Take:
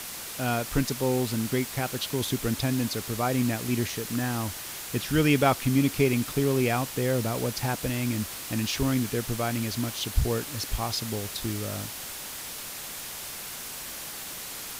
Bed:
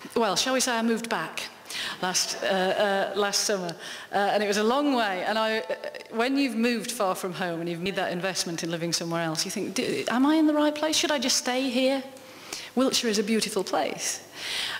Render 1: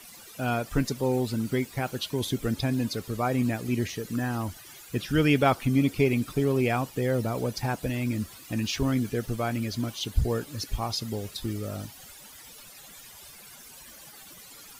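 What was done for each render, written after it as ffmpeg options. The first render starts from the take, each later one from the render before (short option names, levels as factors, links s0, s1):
-af "afftdn=nr=15:nf=-38"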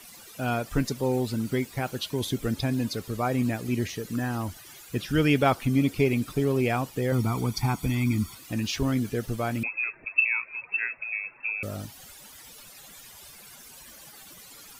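-filter_complex "[0:a]asettb=1/sr,asplit=3[s0][s1][s2];[s0]atrim=end=7.124[s3];[s1]atrim=start=7.12:end=8.35,asetpts=PTS-STARTPTS,afade=t=in:d=0.004:c=qsin,afade=t=out:st=1.226:d=0.004:c=qsin,aecho=1:1:0.9:0.84,atrim=end_sample=54243[s4];[s2]atrim=start=8.346[s5];[s3][s4]acrossfade=d=0.004:c1=hsin:c2=qsin[s6];[s6][s5]acrossfade=d=0.004:c1=qsin:c2=hsin,asettb=1/sr,asplit=3[s7][s8][s9];[s7]atrim=end=9.634[s10];[s8]atrim=start=9.63:end=11.63,asetpts=PTS-STARTPTS,afade=t=in:d=0.004:c=qsin,afade=t=out:st=1.996:d=0.004:c=qsin,lowpass=f=2300:t=q:w=0.5098,lowpass=f=2300:t=q:w=0.6013,lowpass=f=2300:t=q:w=0.9,lowpass=f=2300:t=q:w=2.563,afreqshift=-2700[s11];[s9]atrim=start=11.626[s12];[s10][s11]acrossfade=d=0.004:c1=hsin:c2=qsin[s13];[s13][s12]acrossfade=d=0.004:c1=qsin:c2=hsin"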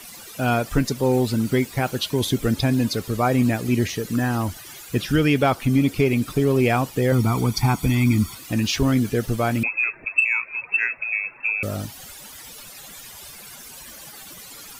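-af "acontrast=82,alimiter=limit=0.355:level=0:latency=1:release=392"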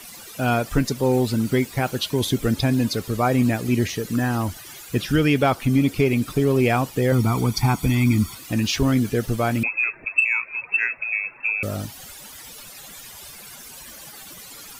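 -af anull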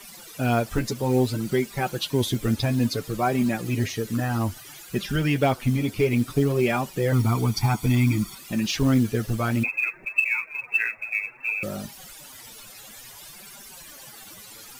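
-af "flanger=delay=5:depth=4.6:regen=6:speed=0.59:shape=sinusoidal,acrusher=bits=7:mode=log:mix=0:aa=0.000001"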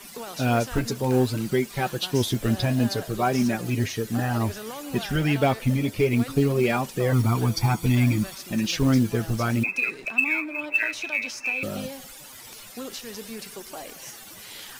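-filter_complex "[1:a]volume=0.211[s0];[0:a][s0]amix=inputs=2:normalize=0"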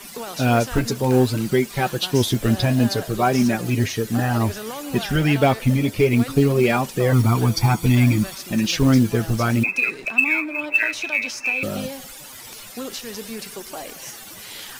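-af "volume=1.68"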